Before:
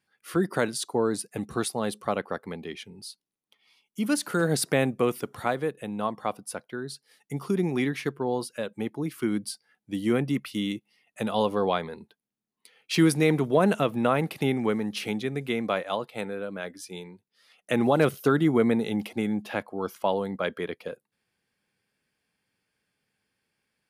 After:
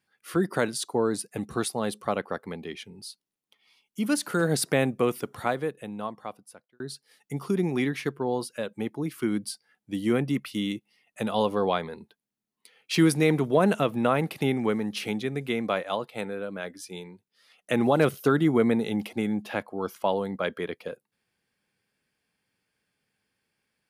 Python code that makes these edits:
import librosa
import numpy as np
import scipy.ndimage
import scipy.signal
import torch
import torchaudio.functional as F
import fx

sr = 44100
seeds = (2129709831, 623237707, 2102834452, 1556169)

y = fx.edit(x, sr, fx.fade_out_span(start_s=5.5, length_s=1.3), tone=tone)